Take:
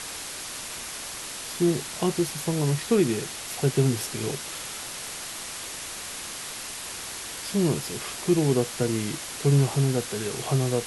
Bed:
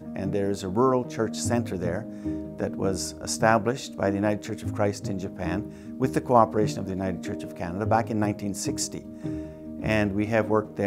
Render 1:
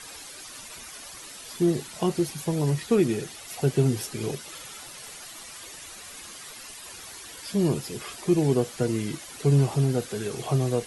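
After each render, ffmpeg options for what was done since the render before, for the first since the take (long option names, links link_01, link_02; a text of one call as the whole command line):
ffmpeg -i in.wav -af "afftdn=noise_reduction=11:noise_floor=-37" out.wav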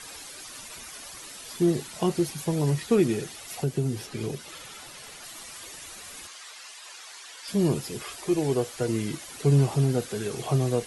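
ffmpeg -i in.wav -filter_complex "[0:a]asettb=1/sr,asplit=3[link_01][link_02][link_03];[link_01]atrim=end=3.614[link_04];[link_02]atrim=start=3.61:end=5.24,asetpts=PTS-STARTPTS,afade=type=in:duration=0.004:curve=qsin,afade=type=out:start_time=1.626:duration=0.004:curve=qsin,acrossover=split=370|5200[link_05][link_06][link_07];[link_05]acompressor=threshold=-24dB:ratio=4[link_08];[link_06]acompressor=threshold=-37dB:ratio=4[link_09];[link_07]acompressor=threshold=-47dB:ratio=4[link_10];[link_08][link_09][link_10]amix=inputs=3:normalize=0[link_11];[link_03]atrim=start=5.236[link_12];[link_04][link_11]acrossfade=duration=0.004:curve1=hsin:curve2=qsin[link_13];[link_13][link_12]acrossfade=duration=0.004:curve1=qsin:curve2=hsin,asettb=1/sr,asplit=3[link_14][link_15][link_16];[link_14]atrim=end=6.274[link_17];[link_15]atrim=start=6.27:end=7.48,asetpts=PTS-STARTPTS,afade=type=in:duration=0.004:curve=qsin,afade=type=out:start_time=1.206:duration=0.004:curve=qsin,highpass=730,lowpass=7600[link_18];[link_16]atrim=start=7.476[link_19];[link_17][link_18]acrossfade=duration=0.004:curve1=hsin:curve2=qsin[link_20];[link_20][link_19]acrossfade=duration=0.004:curve1=qsin:curve2=hsin,asettb=1/sr,asplit=3[link_21][link_22][link_23];[link_21]atrim=end=8.034[link_24];[link_22]atrim=start=8.03:end=8.88,asetpts=PTS-STARTPTS,afade=type=in:duration=0.004:curve=qsin,afade=type=out:start_time=0.846:duration=0.004:curve=qsin,equalizer=frequency=190:width=1.5:gain=-10[link_25];[link_23]atrim=start=8.876[link_26];[link_24][link_25]acrossfade=duration=0.004:curve1=hsin:curve2=qsin[link_27];[link_27][link_26]acrossfade=duration=0.004:curve1=qsin:curve2=hsin" out.wav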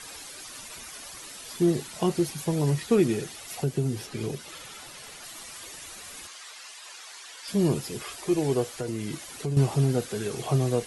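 ffmpeg -i in.wav -filter_complex "[0:a]asettb=1/sr,asplit=3[link_01][link_02][link_03];[link_01]atrim=end=8.754[link_04];[link_02]atrim=start=8.75:end=9.57,asetpts=PTS-STARTPTS,afade=type=in:duration=0.004:curve=qsin,afade=type=out:start_time=0.816:duration=0.004:curve=qsin,acompressor=threshold=-28dB:ratio=3:attack=3.2:release=140:knee=1:detection=peak[link_05];[link_03]atrim=start=9.566[link_06];[link_04][link_05]acrossfade=duration=0.004:curve1=hsin:curve2=qsin[link_07];[link_07][link_06]acrossfade=duration=0.004:curve1=qsin:curve2=hsin" out.wav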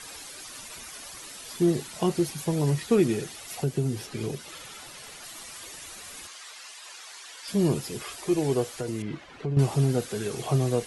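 ffmpeg -i in.wav -filter_complex "[0:a]asettb=1/sr,asplit=3[link_01][link_02][link_03];[link_01]atrim=end=9.024[link_04];[link_02]atrim=start=9.02:end=9.59,asetpts=PTS-STARTPTS,afade=type=in:duration=0.004:curve=qsin,afade=type=out:start_time=0.566:duration=0.004:curve=qsin,lowpass=2500[link_05];[link_03]atrim=start=9.586[link_06];[link_04][link_05]acrossfade=duration=0.004:curve1=hsin:curve2=qsin[link_07];[link_07][link_06]acrossfade=duration=0.004:curve1=qsin:curve2=hsin" out.wav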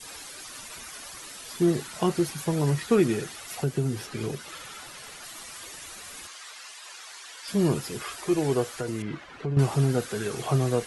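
ffmpeg -i in.wav -af "adynamicequalizer=threshold=0.00316:dfrequency=1400:dqfactor=1.4:tfrequency=1400:tqfactor=1.4:attack=5:release=100:ratio=0.375:range=3:mode=boostabove:tftype=bell" out.wav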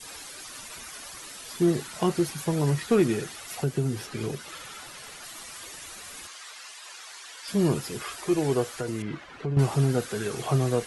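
ffmpeg -i in.wav -af "volume=13.5dB,asoftclip=hard,volume=-13.5dB" out.wav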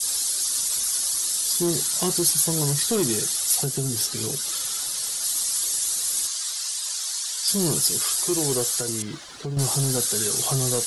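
ffmpeg -i in.wav -af "asoftclip=type=tanh:threshold=-17.5dB,aexciter=amount=8.2:drive=3.6:freq=3600" out.wav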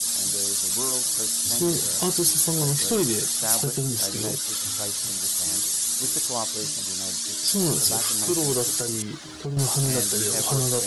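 ffmpeg -i in.wav -i bed.wav -filter_complex "[1:a]volume=-12.5dB[link_01];[0:a][link_01]amix=inputs=2:normalize=0" out.wav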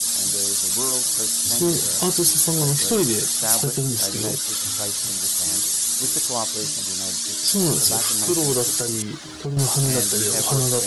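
ffmpeg -i in.wav -af "volume=3dB" out.wav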